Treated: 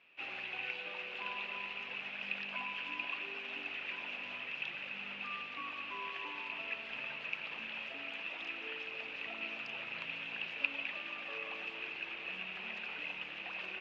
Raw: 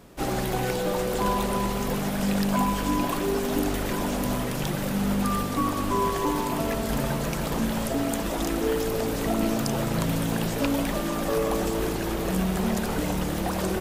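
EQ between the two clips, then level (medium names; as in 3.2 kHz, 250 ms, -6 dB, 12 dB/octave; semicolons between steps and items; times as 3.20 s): band-pass filter 2.6 kHz, Q 11; distance through air 250 m; +10.5 dB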